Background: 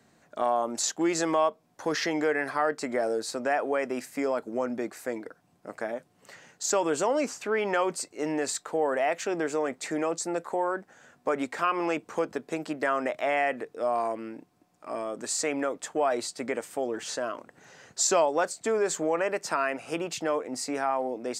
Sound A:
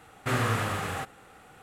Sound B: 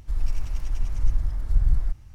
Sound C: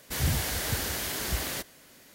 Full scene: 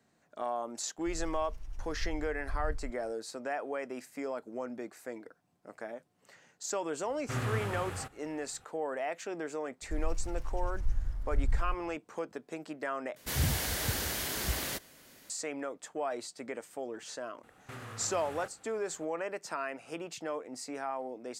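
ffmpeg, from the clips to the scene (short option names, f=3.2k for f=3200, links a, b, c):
-filter_complex "[2:a]asplit=2[a][b];[1:a]asplit=2[c][d];[0:a]volume=-9dB[e];[c]lowshelf=f=110:g=12[f];[d]acompressor=threshold=-32dB:ratio=6:attack=3.2:release=140:knee=1:detection=peak[g];[e]asplit=2[h][i];[h]atrim=end=13.164[j];[3:a]atrim=end=2.14,asetpts=PTS-STARTPTS,volume=-2.5dB[k];[i]atrim=start=15.296[l];[a]atrim=end=2.14,asetpts=PTS-STARTPTS,volume=-16dB,afade=t=in:d=0.004:c=hsin,afade=t=out:st=2.136:d=0.004:c=hsin,adelay=980[m];[f]atrim=end=1.62,asetpts=PTS-STARTPTS,volume=-10dB,afade=t=in:d=0.004:c=hsin,afade=t=out:st=1.616:d=0.004:c=hsin,adelay=7030[n];[b]atrim=end=2.14,asetpts=PTS-STARTPTS,volume=-9dB,afade=t=in:d=0.004:c=hsin,afade=t=out:st=2.136:d=0.004:c=hsin,adelay=9820[o];[g]atrim=end=1.62,asetpts=PTS-STARTPTS,volume=-9.5dB,afade=t=in:d=0.004:c=hsin,afade=t=out:st=1.616:d=0.004:c=hsin,adelay=17430[p];[j][k]acrossfade=d=0.004:c1=hsin:c2=hsin[q];[q][l]acrossfade=d=0.004:c1=hsin:c2=hsin[r];[r][m][n][o][p]amix=inputs=5:normalize=0"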